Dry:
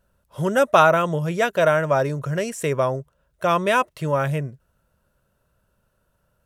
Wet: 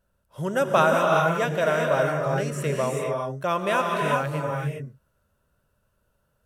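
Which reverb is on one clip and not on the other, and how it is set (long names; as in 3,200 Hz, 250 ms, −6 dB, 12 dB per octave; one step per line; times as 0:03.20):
reverb whose tail is shaped and stops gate 430 ms rising, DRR 0 dB
level −5.5 dB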